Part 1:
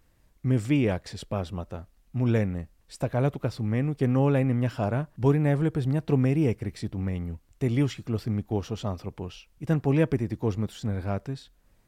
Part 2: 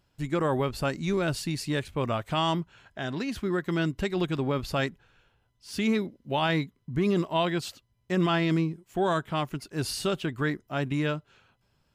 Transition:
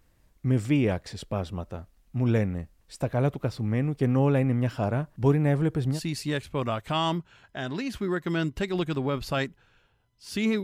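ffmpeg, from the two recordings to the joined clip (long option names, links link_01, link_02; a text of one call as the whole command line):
ffmpeg -i cue0.wav -i cue1.wav -filter_complex "[0:a]apad=whole_dur=10.63,atrim=end=10.63,atrim=end=6.02,asetpts=PTS-STARTPTS[link_01];[1:a]atrim=start=1.32:end=6.05,asetpts=PTS-STARTPTS[link_02];[link_01][link_02]acrossfade=duration=0.12:curve1=tri:curve2=tri" out.wav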